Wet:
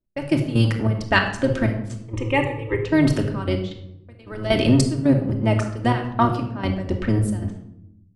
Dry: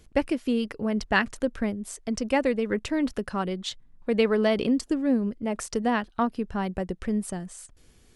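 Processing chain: octaver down 1 oct, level +3 dB; 2.01–2.79 fixed phaser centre 1000 Hz, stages 8; 6.25–6.65 HPF 160 Hz; low-pass opened by the level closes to 800 Hz, open at -20 dBFS; tilt +1.5 dB/oct; in parallel at -2.5 dB: limiter -18.5 dBFS, peak gain reduction 11.5 dB; 3.61–4.35 on the sum: compressor 6:1, threshold -33 dBFS, peak gain reduction 17 dB; step gate "x...x..xxx" 190 bpm -12 dB; gate -44 dBFS, range -32 dB; on a send at -2 dB: reverb RT60 0.80 s, pre-delay 3 ms; on the sum: gain +2 dB

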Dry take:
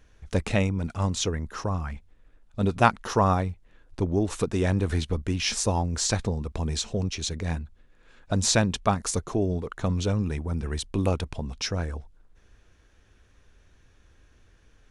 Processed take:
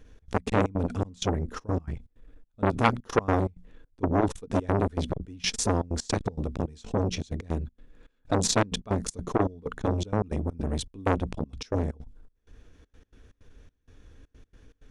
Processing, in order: low shelf 310 Hz +7 dB; notches 60/120/180/240 Hz; small resonant body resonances 270/450/3400 Hz, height 8 dB, ringing for 45 ms; step gate "xx.x.xx.xxx..xx" 160 bpm -24 dB; core saturation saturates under 1700 Hz

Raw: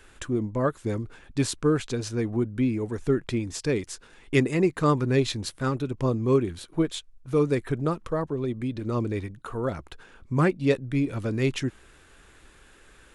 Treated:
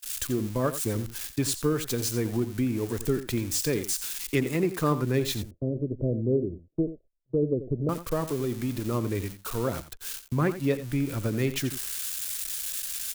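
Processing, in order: switching spikes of -25.5 dBFS; 5.42–7.89 steep low-pass 660 Hz 96 dB/oct; gate -36 dBFS, range -29 dB; compressor 2.5:1, threshold -29 dBFS, peak gain reduction 9 dB; echo 87 ms -12 dB; three-band expander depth 40%; gain +3 dB

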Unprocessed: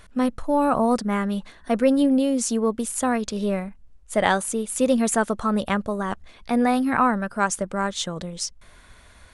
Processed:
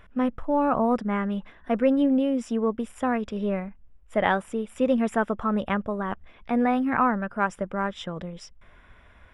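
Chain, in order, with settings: polynomial smoothing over 25 samples; gain -2.5 dB

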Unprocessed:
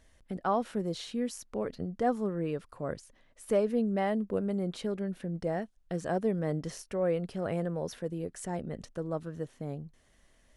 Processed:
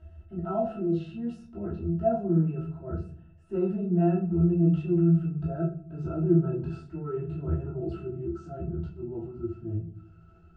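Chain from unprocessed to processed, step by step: gliding pitch shift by -5.5 st starting unshifted; upward compressor, threshold -50 dBFS; transient shaper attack -6 dB, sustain +4 dB; octave resonator E, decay 0.14 s; reverb RT60 0.45 s, pre-delay 3 ms, DRR -8 dB; gain +6 dB

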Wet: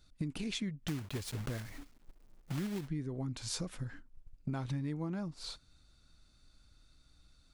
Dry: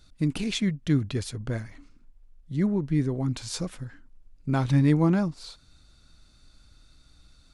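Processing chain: 0.88–2.89 block floating point 3-bit; gate -47 dBFS, range -9 dB; compressor 8:1, threshold -36 dBFS, peak gain reduction 19 dB; gain +1 dB

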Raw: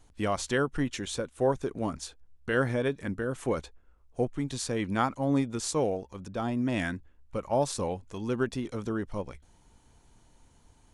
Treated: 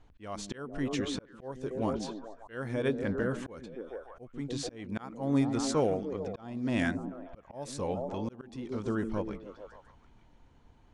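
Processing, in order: low-pass opened by the level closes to 2900 Hz, open at -22 dBFS; delay with a stepping band-pass 0.147 s, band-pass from 210 Hz, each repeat 0.7 oct, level -4.5 dB; auto swell 0.477 s

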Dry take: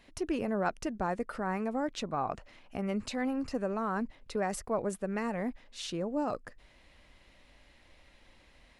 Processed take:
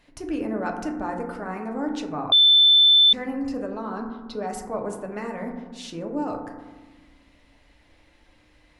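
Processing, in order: 3.66–4.48 graphic EQ 2000/4000/8000 Hz -9/+11/-12 dB; FDN reverb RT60 1.3 s, low-frequency decay 1.5×, high-frequency decay 0.25×, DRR 1.5 dB; 2.32–3.13 bleep 3530 Hz -11.5 dBFS

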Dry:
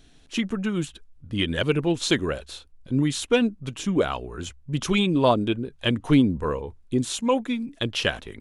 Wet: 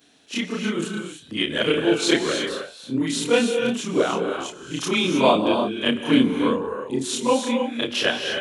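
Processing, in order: short-time reversal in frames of 76 ms; HPF 260 Hz 12 dB/oct; non-linear reverb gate 0.34 s rising, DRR 4 dB; gain +6 dB

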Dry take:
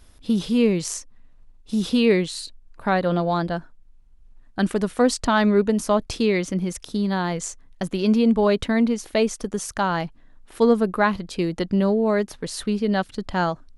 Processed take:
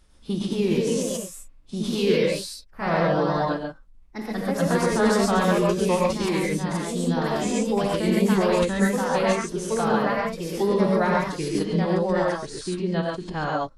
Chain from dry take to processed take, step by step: echoes that change speed 0.257 s, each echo +2 st, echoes 2; non-linear reverb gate 0.16 s rising, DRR -2 dB; formant-preserving pitch shift -2.5 st; gain -6.5 dB

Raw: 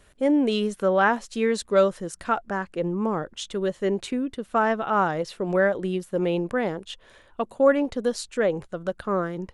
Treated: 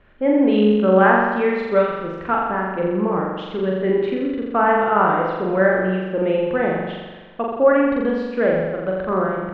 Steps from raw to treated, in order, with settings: LPF 2700 Hz 24 dB/oct; flutter echo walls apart 7.3 m, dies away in 1.3 s; gain +2 dB

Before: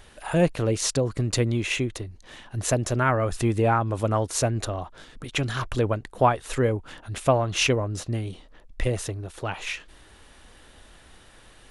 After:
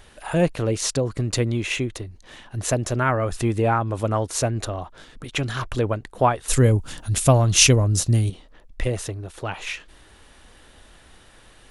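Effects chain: 6.48–8.3 tone controls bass +10 dB, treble +15 dB; gain +1 dB

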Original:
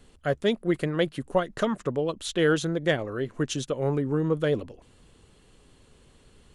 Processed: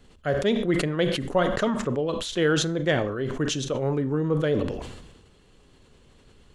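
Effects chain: bell 9500 Hz -9.5 dB 0.42 oct; Schroeder reverb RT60 0.39 s, combs from 30 ms, DRR 14.5 dB; sustainer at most 48 dB/s

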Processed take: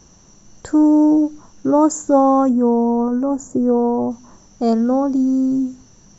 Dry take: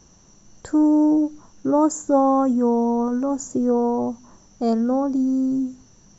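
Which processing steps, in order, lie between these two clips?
2.49–4.11 bell 3900 Hz -13.5 dB 1.8 oct; gain +4 dB

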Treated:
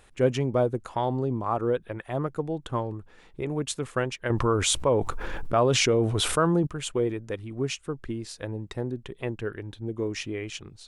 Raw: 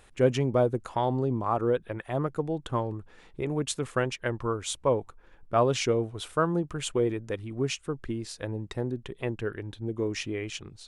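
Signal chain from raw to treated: 4.3–6.67 fast leveller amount 70%

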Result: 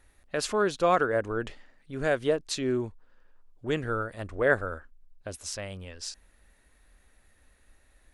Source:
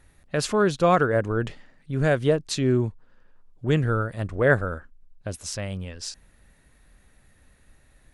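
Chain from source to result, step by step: bell 140 Hz -11.5 dB 1.2 oct; gain -3 dB

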